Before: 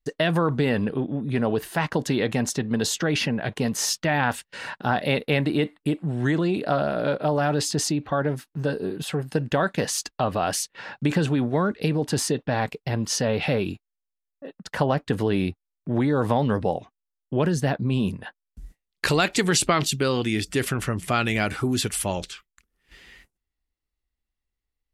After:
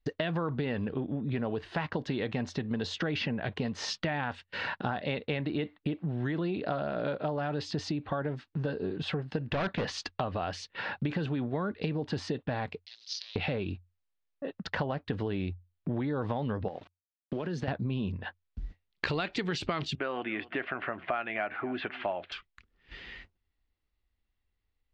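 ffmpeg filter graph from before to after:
-filter_complex "[0:a]asettb=1/sr,asplit=3[a][b][c];[a]atrim=end=9.484[d];[b]atrim=start=9.48:end=9.92,asetpts=PTS-STARTPTS,afade=t=in:d=0.004:c=qsin,afade=t=out:st=0.436:d=0.004:c=qsin,highshelf=f=6.6k:g=-11.5,acontrast=34,asoftclip=type=hard:threshold=-21dB[e];[c]atrim=start=9.916[f];[d][e]acrossfade=d=0.004:c1=hsin:c2=qsin[g];[g][f]acrossfade=d=0.004:c1=qsin:c2=hsin,asettb=1/sr,asplit=3[h][i][j];[h]atrim=end=12.854[k];[i]atrim=start=12.85:end=13.36,asetpts=PTS-STARTPTS,afade=t=in:d=0.004:c=qsin,afade=t=out:st=0.506:d=0.004:c=qsin,acrusher=bits=4:dc=4:mix=0:aa=0.000001,asuperpass=centerf=4800:order=4:qfactor=2.2[l];[j]atrim=start=13.356[m];[k][l]acrossfade=d=0.004:c1=hsin:c2=qsin[n];[n][m]acrossfade=d=0.004:c1=qsin:c2=hsin,asettb=1/sr,asplit=3[o][p][q];[o]atrim=end=16.684[r];[p]atrim=start=16.68:end=17.68,asetpts=PTS-STARTPTS,afade=t=in:d=0.004:c=qsin,afade=t=out:st=0.996:d=0.004:c=qsin,highpass=180,acompressor=threshold=-27dB:ratio=6:attack=3.2:release=140:knee=1:detection=peak,aeval=exprs='val(0)*gte(abs(val(0)),0.00447)':c=same[s];[q]atrim=start=17.676[t];[r][s]acrossfade=d=0.004:c1=hsin:c2=qsin[u];[u][t]acrossfade=d=0.004:c1=qsin:c2=hsin,asettb=1/sr,asplit=3[v][w][x];[v]atrim=end=19.954[y];[w]atrim=start=19.95:end=22.32,asetpts=PTS-STARTPTS,afade=t=in:d=0.004:c=qsin,afade=t=out:st=2.366:d=0.004:c=qsin,highpass=400,equalizer=f=460:t=q:w=4:g=-7,equalizer=f=670:t=q:w=4:g=9,equalizer=f=1.6k:t=q:w=4:g=3,lowpass=f=2.5k:w=0.5412,lowpass=f=2.5k:w=1.3066,aecho=1:1:259:0.0668,atrim=end_sample=104517[z];[x]atrim=start=22.316[aa];[y][z]acrossfade=d=0.004:c1=hsin:c2=qsin[ab];[ab][aa]acrossfade=d=0.004:c1=qsin:c2=hsin,lowpass=f=4.3k:w=0.5412,lowpass=f=4.3k:w=1.3066,equalizer=f=89:t=o:w=0.25:g=8.5,acompressor=threshold=-35dB:ratio=4,volume=3.5dB"

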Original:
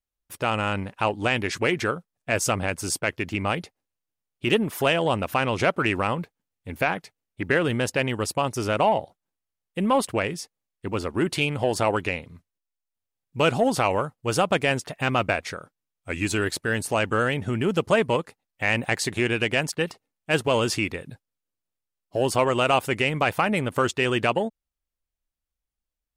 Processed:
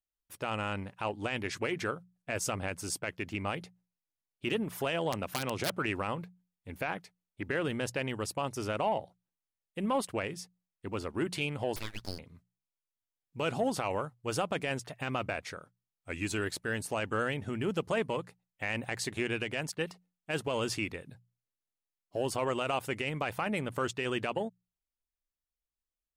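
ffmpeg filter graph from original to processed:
-filter_complex "[0:a]asettb=1/sr,asplit=3[a][b][c];[a]atrim=end=5.124[d];[b]atrim=start=5.12:end=5.77,asetpts=PTS-STARTPTS,afade=t=in:d=0.004:c=qsin,afade=t=out:st=0.646:d=0.004:c=qsin,aeval=exprs='(mod(3.98*val(0)+1,2)-1)/3.98':c=same,highpass=f=88:w=0.5412,highpass=f=88:w=1.3066[e];[c]atrim=start=5.766[f];[d][e]acrossfade=d=0.004:c1=hsin:c2=qsin[g];[g][f]acrossfade=d=0.004:c1=qsin:c2=hsin,asettb=1/sr,asplit=3[h][i][j];[h]atrim=end=11.764[k];[i]atrim=start=11.76:end=12.19,asetpts=PTS-STARTPTS,afade=t=in:d=0.004:c=qsin,afade=t=out:st=0.426:d=0.004:c=qsin,highpass=f=1.1k:w=0.5412,highpass=f=1.1k:w=1.3066,aeval=exprs='abs(val(0))':c=same,acrusher=bits=8:mode=log:mix=0:aa=0.000001[l];[j]atrim=start=12.186[m];[k][l]acrossfade=d=0.004:c1=hsin:c2=qsin[n];[n][m]acrossfade=d=0.004:c1=qsin:c2=hsin,bandreject=f=60:t=h:w=6,bandreject=f=120:t=h:w=6,bandreject=f=180:t=h:w=6,alimiter=limit=-12dB:level=0:latency=1:release=25,volume=-8.5dB"

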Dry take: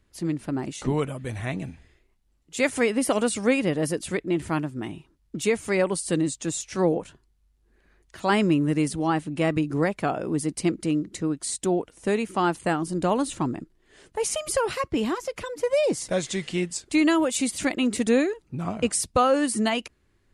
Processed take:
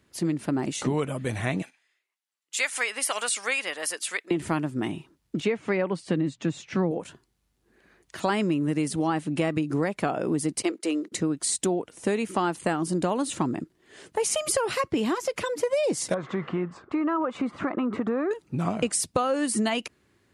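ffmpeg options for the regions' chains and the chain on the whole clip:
-filter_complex "[0:a]asettb=1/sr,asplit=3[a][b][c];[a]atrim=end=1.624[d];[b]atrim=start=1.62:end=4.31,asetpts=PTS-STARTPTS,afade=t=in:d=0.004:c=qsin,afade=t=out:st=2.686:d=0.004:c=qsin,highpass=1.2k,agate=range=-11dB:threshold=-58dB:ratio=16:release=100:detection=peak[e];[c]atrim=start=4.306[f];[d][e]acrossfade=d=0.004:c1=hsin:c2=qsin[g];[g][f]acrossfade=d=0.004:c1=qsin:c2=hsin,asettb=1/sr,asplit=3[h][i][j];[h]atrim=end=5.404[k];[i]atrim=start=5.4:end=6.91,asetpts=PTS-STARTPTS,afade=t=in:d=0.004:c=qsin,afade=t=out:st=1.506:d=0.004:c=qsin,asubboost=boost=7:cutoff=230,highpass=140,lowpass=2.7k[l];[j]atrim=start=6.906[m];[k][l]acrossfade=d=0.004:c1=hsin:c2=qsin[n];[n][m]acrossfade=d=0.004:c1=qsin:c2=hsin,asettb=1/sr,asplit=3[o][p][q];[o]atrim=end=10.624[r];[p]atrim=start=10.62:end=11.12,asetpts=PTS-STARTPTS,afade=t=in:d=0.004:c=qsin,afade=t=out:st=0.496:d=0.004:c=qsin,agate=range=-12dB:threshold=-40dB:ratio=16:release=100:detection=peak,highpass=f=350:w=0.5412,highpass=f=350:w=1.3066[s];[q]atrim=start=11.116[t];[r][s]acrossfade=d=0.004:c1=hsin:c2=qsin[u];[u][t]acrossfade=d=0.004:c1=qsin:c2=hsin,asettb=1/sr,asplit=3[v][w][x];[v]atrim=end=16.144[y];[w]atrim=start=16.14:end=18.31,asetpts=PTS-STARTPTS,afade=t=in:d=0.004:c=qsin,afade=t=out:st=2.166:d=0.004:c=qsin,lowpass=f=1.2k:t=q:w=4.4,acompressor=threshold=-27dB:ratio=4:attack=3.2:release=140:knee=1:detection=peak[z];[x]atrim=start=18.306[aa];[y][z]acrossfade=d=0.004:c1=hsin:c2=qsin[ab];[ab][aa]acrossfade=d=0.004:c1=qsin:c2=hsin,highpass=120,acompressor=threshold=-27dB:ratio=6,volume=5dB"

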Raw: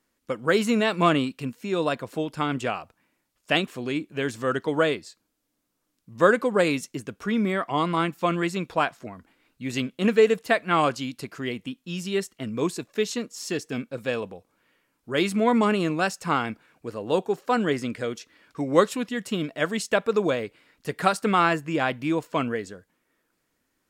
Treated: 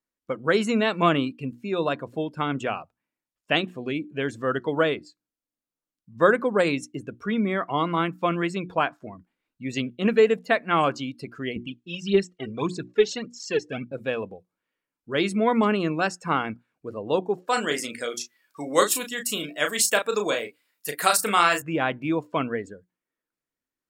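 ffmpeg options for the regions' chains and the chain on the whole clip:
-filter_complex "[0:a]asettb=1/sr,asplit=3[a][b][c];[a]atrim=end=11.564[d];[b]atrim=start=11.56:end=13.92,asetpts=PTS-STARTPTS,afade=t=in:d=0.004:c=qsin,afade=t=out:st=2.356:d=0.004:c=qsin,lowpass=6.7k,aphaser=in_gain=1:out_gain=1:delay=2.7:decay=0.64:speed=1.7:type=triangular[e];[c]atrim=start=13.916[f];[d][e]acrossfade=d=0.004:c1=hsin:c2=qsin[g];[g][f]acrossfade=d=0.004:c1=qsin:c2=hsin,asettb=1/sr,asplit=3[h][i][j];[h]atrim=end=17.484[k];[i]atrim=start=17.48:end=21.62,asetpts=PTS-STARTPTS,afade=t=in:d=0.004:c=qsin,afade=t=out:st=4.136:d=0.004:c=qsin,aemphasis=mode=production:type=riaa,asplit=2[l][m];[m]adelay=34,volume=-6dB[n];[l][n]amix=inputs=2:normalize=0,atrim=end_sample=182574[o];[j]atrim=start=21.616[p];[k][o]acrossfade=d=0.004:c1=hsin:c2=qsin[q];[q][p]acrossfade=d=0.004:c1=qsin:c2=hsin,bandreject=f=60:t=h:w=6,bandreject=f=120:t=h:w=6,bandreject=f=180:t=h:w=6,bandreject=f=240:t=h:w=6,bandreject=f=300:t=h:w=6,bandreject=f=360:t=h:w=6,afftdn=nr=17:nf=-40"

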